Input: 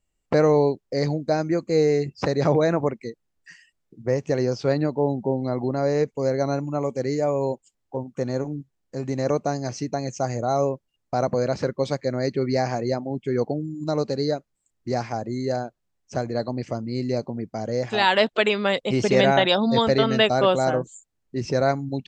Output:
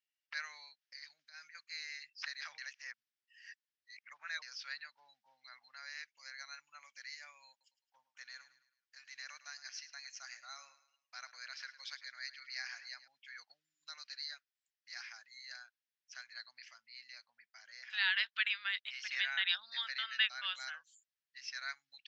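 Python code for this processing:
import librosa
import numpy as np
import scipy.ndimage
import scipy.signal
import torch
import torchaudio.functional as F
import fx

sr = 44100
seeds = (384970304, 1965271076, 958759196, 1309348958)

y = fx.over_compress(x, sr, threshold_db=-29.0, ratio=-1.0, at=(0.81, 1.55))
y = fx.echo_feedback(y, sr, ms=107, feedback_pct=42, wet_db=-15.0, at=(7.5, 13.08))
y = fx.high_shelf(y, sr, hz=3700.0, db=-7.0, at=(16.74, 20.45))
y = fx.edit(y, sr, fx.reverse_span(start_s=2.58, length_s=1.84), tone=tone)
y = scipy.signal.sosfilt(scipy.signal.ellip(3, 1.0, 60, [1600.0, 5600.0], 'bandpass', fs=sr, output='sos'), y)
y = y * 10.0 ** (-6.0 / 20.0)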